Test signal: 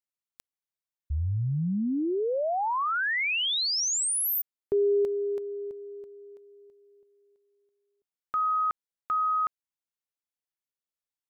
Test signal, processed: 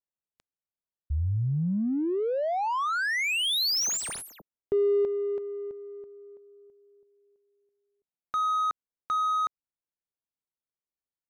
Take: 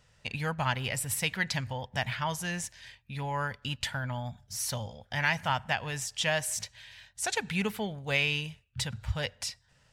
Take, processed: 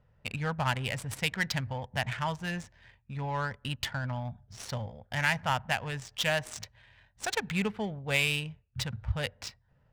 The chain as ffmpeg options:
-af "bass=f=250:g=1,treble=f=4000:g=3,adynamicsmooth=sensitivity=5:basefreq=1200"

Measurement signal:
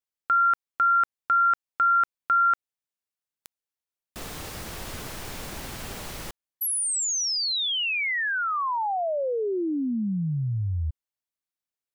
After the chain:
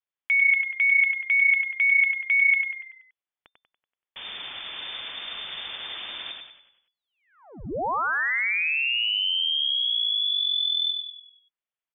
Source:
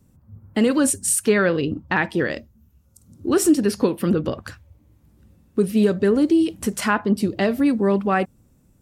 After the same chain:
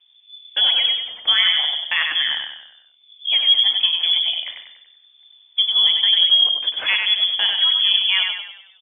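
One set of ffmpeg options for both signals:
-filter_complex "[0:a]asplit=7[s0][s1][s2][s3][s4][s5][s6];[s1]adelay=95,afreqshift=30,volume=0.596[s7];[s2]adelay=190,afreqshift=60,volume=0.275[s8];[s3]adelay=285,afreqshift=90,volume=0.126[s9];[s4]adelay=380,afreqshift=120,volume=0.0582[s10];[s5]adelay=475,afreqshift=150,volume=0.0266[s11];[s6]adelay=570,afreqshift=180,volume=0.0123[s12];[s0][s7][s8][s9][s10][s11][s12]amix=inputs=7:normalize=0,lowpass=f=3100:t=q:w=0.5098,lowpass=f=3100:t=q:w=0.6013,lowpass=f=3100:t=q:w=0.9,lowpass=f=3100:t=q:w=2.563,afreqshift=-3600"

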